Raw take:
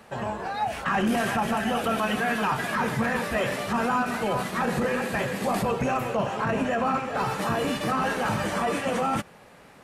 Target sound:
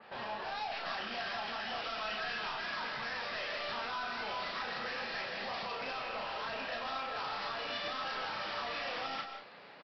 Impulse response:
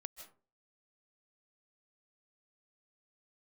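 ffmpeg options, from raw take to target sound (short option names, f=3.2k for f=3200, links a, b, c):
-filter_complex "[0:a]highpass=f=520:p=1,acrossover=split=660[a][b];[a]acompressor=threshold=-42dB:ratio=6[c];[c][b]amix=inputs=2:normalize=0,alimiter=limit=-21.5dB:level=0:latency=1:release=405,aresample=11025,asoftclip=type=tanh:threshold=-36.5dB,aresample=44100,asplit=2[d][e];[e]adelay=34,volume=-3.5dB[f];[d][f]amix=inputs=2:normalize=0[g];[1:a]atrim=start_sample=2205[h];[g][h]afir=irnorm=-1:irlink=0,adynamicequalizer=threshold=0.00126:dfrequency=3100:dqfactor=0.7:tfrequency=3100:tqfactor=0.7:attack=5:release=100:ratio=0.375:range=3:mode=boostabove:tftype=highshelf,volume=2.5dB"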